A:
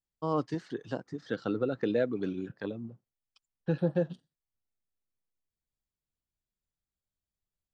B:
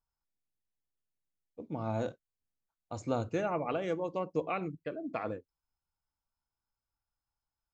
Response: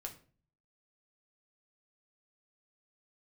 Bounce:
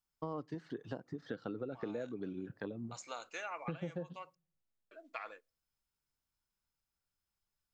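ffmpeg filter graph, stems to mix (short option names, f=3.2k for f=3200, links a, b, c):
-filter_complex "[0:a]highshelf=f=3.9k:g=-10,volume=-0.5dB,asplit=2[a][b];[b]volume=-23dB[c];[1:a]acontrast=64,highpass=1.4k,volume=-4dB,asplit=3[d][e][f];[d]atrim=end=4.35,asetpts=PTS-STARTPTS,afade=t=out:st=4.346:d=0.004:c=hsin[g];[e]atrim=start=4.35:end=4.91,asetpts=PTS-STARTPTS,volume=0[h];[f]atrim=start=4.91,asetpts=PTS-STARTPTS,afade=t=in:d=0.004:c=hsin[i];[g][h][i]concat=n=3:v=0:a=1,asplit=2[j][k];[k]volume=-24dB[l];[2:a]atrim=start_sample=2205[m];[c][l]amix=inputs=2:normalize=0[n];[n][m]afir=irnorm=-1:irlink=0[o];[a][j][o]amix=inputs=3:normalize=0,acompressor=threshold=-38dB:ratio=6"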